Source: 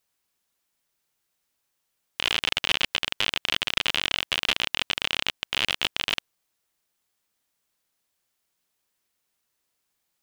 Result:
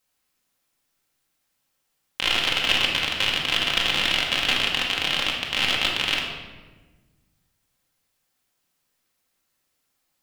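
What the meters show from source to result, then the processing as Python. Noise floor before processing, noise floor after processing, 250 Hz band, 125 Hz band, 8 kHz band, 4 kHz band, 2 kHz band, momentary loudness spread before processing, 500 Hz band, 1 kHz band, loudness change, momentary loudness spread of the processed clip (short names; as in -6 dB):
-78 dBFS, -75 dBFS, +6.0 dB, +6.0 dB, +3.0 dB, +3.5 dB, +4.0 dB, 4 LU, +4.5 dB, +4.5 dB, +4.0 dB, 5 LU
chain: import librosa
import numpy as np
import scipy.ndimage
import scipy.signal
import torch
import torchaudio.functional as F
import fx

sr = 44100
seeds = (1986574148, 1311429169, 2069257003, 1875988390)

y = fx.room_shoebox(x, sr, seeds[0], volume_m3=950.0, walls='mixed', distance_m=2.1)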